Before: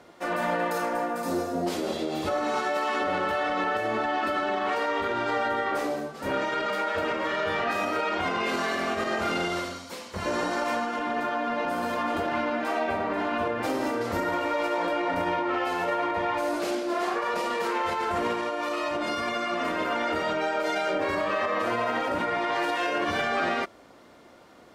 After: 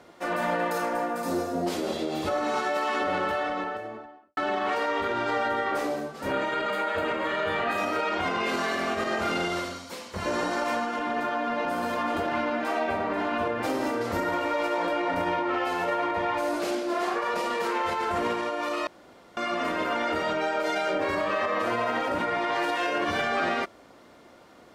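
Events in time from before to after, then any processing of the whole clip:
3.19–4.37 s: studio fade out
6.32–7.78 s: peaking EQ 5.5 kHz -13.5 dB 0.24 oct
18.87–19.37 s: room tone

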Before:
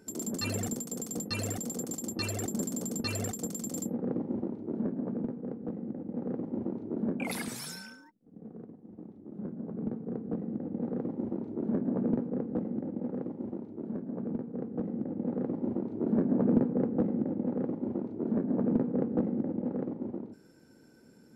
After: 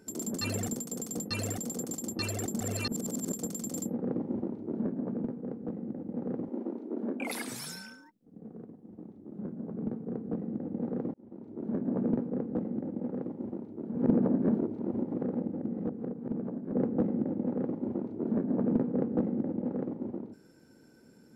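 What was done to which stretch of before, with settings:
2.60–3.32 s: reverse
6.48–7.49 s: steep high-pass 230 Hz
11.14–11.94 s: fade in
13.95–16.72 s: reverse

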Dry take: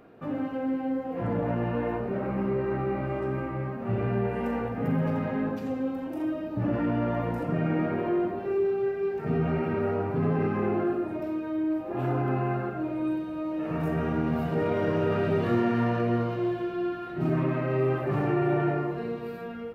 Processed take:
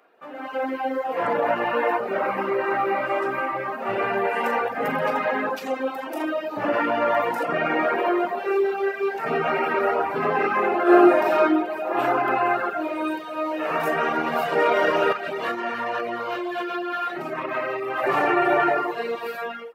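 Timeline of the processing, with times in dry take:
10.82–11.41 s: reverb throw, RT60 2.3 s, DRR -8.5 dB
15.12–18.04 s: compression 5:1, threshold -29 dBFS
whole clip: high-pass 710 Hz 12 dB/octave; reverb removal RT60 0.75 s; level rider gain up to 16 dB

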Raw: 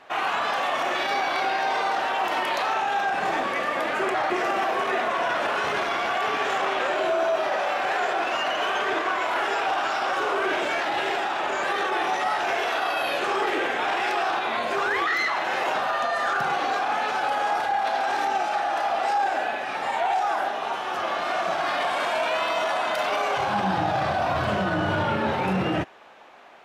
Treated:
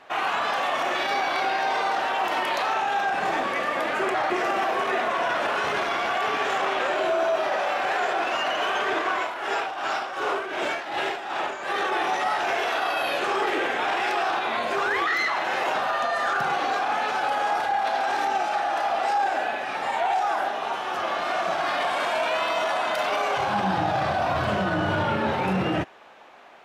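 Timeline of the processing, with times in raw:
9.18–11.82 s: tremolo 2.7 Hz, depth 65%

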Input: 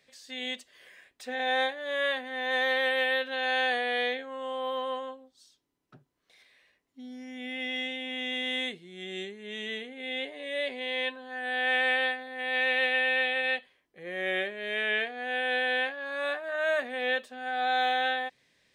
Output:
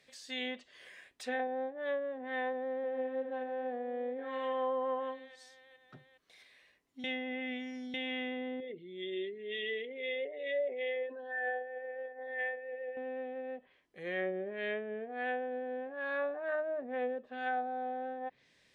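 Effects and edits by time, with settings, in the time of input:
2.42–2.89 s: echo throw 410 ms, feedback 60%, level -7 dB
7.04–7.94 s: reverse
8.60–12.97 s: resonances exaggerated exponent 2
whole clip: low-pass that closes with the level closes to 410 Hz, closed at -26 dBFS

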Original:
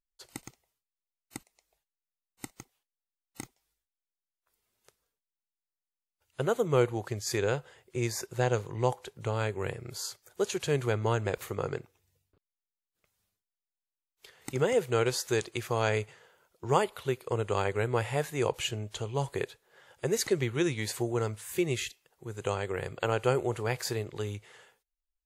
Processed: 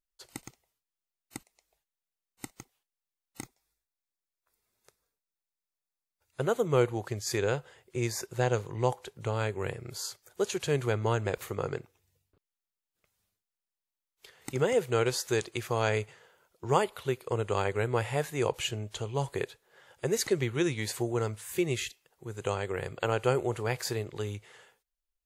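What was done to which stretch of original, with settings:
3.42–6.41 s: band-stop 3 kHz, Q 5.7

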